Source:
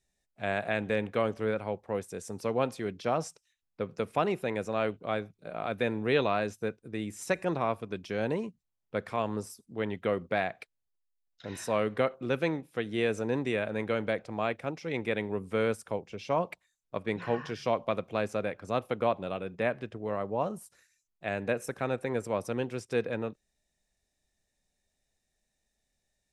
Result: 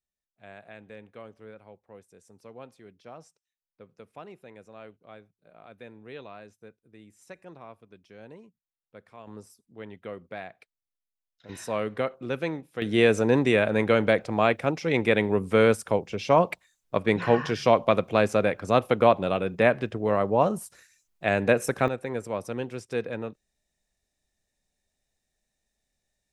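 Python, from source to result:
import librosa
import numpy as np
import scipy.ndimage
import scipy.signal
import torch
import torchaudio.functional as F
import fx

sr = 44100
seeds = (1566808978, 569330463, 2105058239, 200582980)

y = fx.gain(x, sr, db=fx.steps((0.0, -16.0), (9.27, -9.0), (11.49, -0.5), (12.82, 9.0), (21.88, 0.0)))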